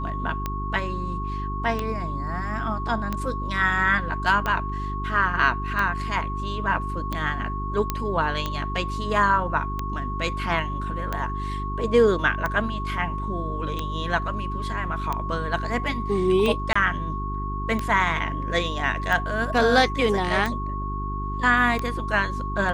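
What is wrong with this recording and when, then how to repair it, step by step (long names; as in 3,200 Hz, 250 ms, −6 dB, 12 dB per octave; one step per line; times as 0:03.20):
mains hum 50 Hz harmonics 8 −30 dBFS
scratch tick 45 rpm −13 dBFS
whistle 1,100 Hz −31 dBFS
0:07.90: click −9 dBFS
0:16.73–0:16.75: drop-out 25 ms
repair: click removal
notch filter 1,100 Hz, Q 30
hum removal 50 Hz, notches 8
repair the gap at 0:16.73, 25 ms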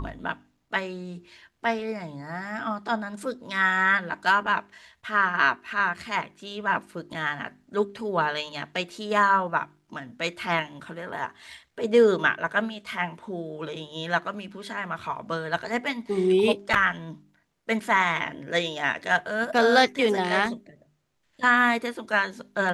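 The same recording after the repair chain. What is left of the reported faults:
0:07.90: click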